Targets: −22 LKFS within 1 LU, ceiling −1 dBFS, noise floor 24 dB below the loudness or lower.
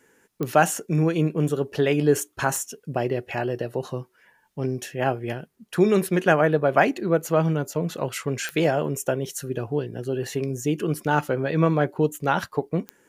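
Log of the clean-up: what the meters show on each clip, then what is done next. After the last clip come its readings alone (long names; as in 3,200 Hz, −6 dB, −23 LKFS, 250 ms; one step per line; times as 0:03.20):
number of clicks 4; integrated loudness −24.0 LKFS; sample peak −3.5 dBFS; target loudness −22.0 LKFS
→ click removal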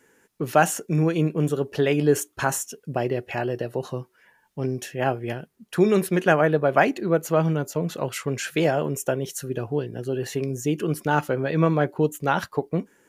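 number of clicks 0; integrated loudness −24.0 LKFS; sample peak −3.5 dBFS; target loudness −22.0 LKFS
→ level +2 dB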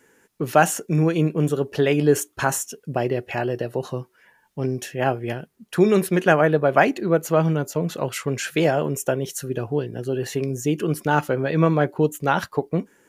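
integrated loudness −22.0 LKFS; sample peak −1.5 dBFS; background noise floor −62 dBFS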